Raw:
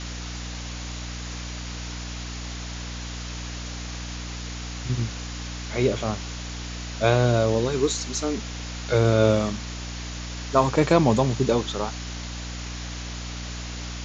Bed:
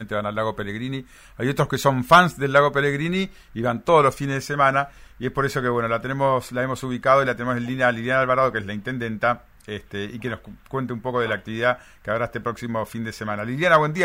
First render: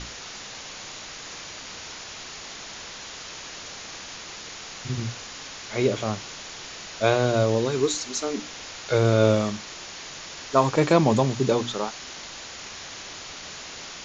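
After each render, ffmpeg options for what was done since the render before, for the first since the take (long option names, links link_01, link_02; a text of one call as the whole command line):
ffmpeg -i in.wav -af "bandreject=frequency=60:width_type=h:width=6,bandreject=frequency=120:width_type=h:width=6,bandreject=frequency=180:width_type=h:width=6,bandreject=frequency=240:width_type=h:width=6,bandreject=frequency=300:width_type=h:width=6" out.wav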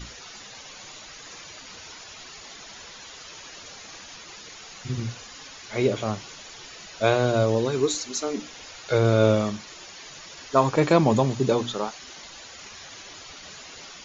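ffmpeg -i in.wav -af "afftdn=noise_reduction=10:noise_floor=-40" out.wav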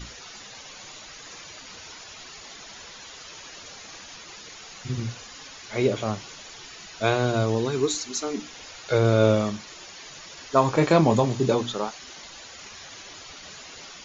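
ffmpeg -i in.wav -filter_complex "[0:a]asettb=1/sr,asplit=3[link_01][link_02][link_03];[link_01]atrim=end=6.594[link_04];[link_02]atrim=start=6.59:end=8.53,asetpts=PTS-STARTPTS,afade=type=in:duration=0.004:curve=qsin,afade=type=out:start_time=1.936:duration=0.004:curve=qsin,equalizer=frequency=550:width_type=o:width=0.27:gain=-8[link_05];[link_03]atrim=start=8.526[link_06];[link_04][link_05]acrossfade=duration=0.004:curve1=hsin:curve2=qsin[link_07];[link_07][link_06]acrossfade=duration=0.004:curve1=qsin:curve2=hsin,asettb=1/sr,asplit=3[link_08][link_09][link_10];[link_08]atrim=end=10.664[link_11];[link_09]atrim=start=10.66:end=11.55,asetpts=PTS-STARTPTS,afade=type=in:duration=0.004:curve=qsin,afade=type=out:start_time=0.886:duration=0.004:curve=qsin,asplit=2[link_12][link_13];[link_13]adelay=25,volume=-9dB[link_14];[link_12][link_14]amix=inputs=2:normalize=0,atrim=end_sample=39249[link_15];[link_10]atrim=start=11.546[link_16];[link_11][link_15]acrossfade=duration=0.004:curve1=hsin:curve2=qsin[link_17];[link_17][link_16]acrossfade=duration=0.004:curve1=qsin:curve2=hsin" out.wav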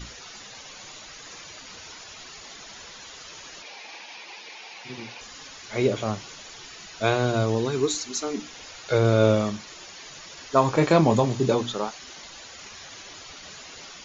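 ffmpeg -i in.wav -filter_complex "[0:a]asettb=1/sr,asplit=3[link_01][link_02][link_03];[link_01]atrim=end=3.624[link_04];[link_02]atrim=start=3.62:end=5.21,asetpts=PTS-STARTPTS,afade=type=in:duration=0.004:curve=qsin,afade=type=out:start_time=1.586:duration=0.004:curve=qsin,highpass=330,equalizer=frequency=860:width_type=q:width=4:gain=8,equalizer=frequency=1300:width_type=q:width=4:gain=-6,equalizer=frequency=2400:width_type=q:width=4:gain=8,lowpass=frequency=5500:width=0.5412,lowpass=frequency=5500:width=1.3066[link_05];[link_03]atrim=start=5.206[link_06];[link_04][link_05]acrossfade=duration=0.004:curve1=hsin:curve2=qsin[link_07];[link_07][link_06]acrossfade=duration=0.004:curve1=qsin:curve2=hsin" out.wav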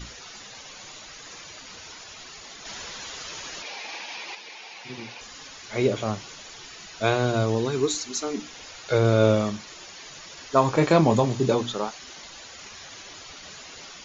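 ffmpeg -i in.wav -filter_complex "[0:a]asettb=1/sr,asplit=3[link_01][link_02][link_03];[link_01]atrim=end=2.654[link_04];[link_02]atrim=start=2.65:end=4.35,asetpts=PTS-STARTPTS,afade=type=in:duration=0.004:curve=qsin,afade=type=out:start_time=1.696:duration=0.004:curve=qsin,acontrast=33[link_05];[link_03]atrim=start=4.346[link_06];[link_04][link_05]acrossfade=duration=0.004:curve1=hsin:curve2=qsin[link_07];[link_07][link_06]acrossfade=duration=0.004:curve1=qsin:curve2=hsin" out.wav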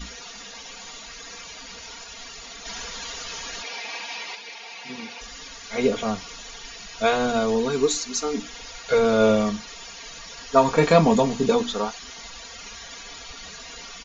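ffmpeg -i in.wav -af "asubboost=boost=2:cutoff=120,aecho=1:1:4.3:0.97" out.wav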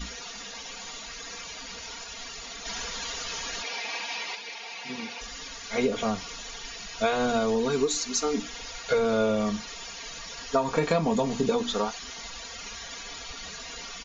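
ffmpeg -i in.wav -af "acompressor=threshold=-21dB:ratio=6" out.wav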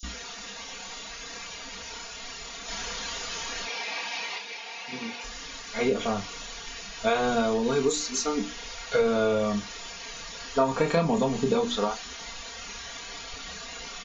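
ffmpeg -i in.wav -filter_complex "[0:a]asplit=2[link_01][link_02];[link_02]adelay=30,volume=-7dB[link_03];[link_01][link_03]amix=inputs=2:normalize=0,acrossover=split=5600[link_04][link_05];[link_04]adelay=30[link_06];[link_06][link_05]amix=inputs=2:normalize=0" out.wav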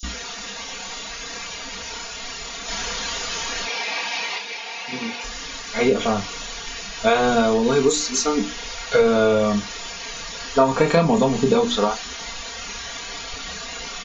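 ffmpeg -i in.wav -af "volume=7dB" out.wav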